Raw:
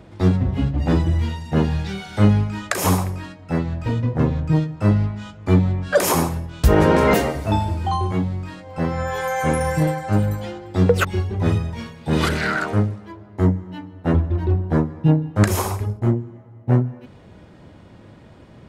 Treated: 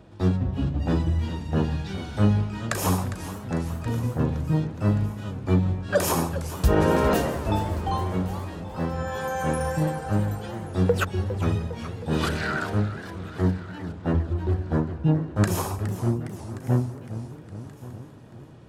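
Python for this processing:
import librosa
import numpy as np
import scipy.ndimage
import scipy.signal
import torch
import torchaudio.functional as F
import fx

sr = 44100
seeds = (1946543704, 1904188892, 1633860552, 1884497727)

y = fx.notch(x, sr, hz=2100.0, q=8.1)
y = fx.echo_feedback(y, sr, ms=1129, feedback_pct=42, wet_db=-19)
y = fx.echo_warbled(y, sr, ms=412, feedback_pct=63, rate_hz=2.8, cents=191, wet_db=-13)
y = y * librosa.db_to_amplitude(-5.5)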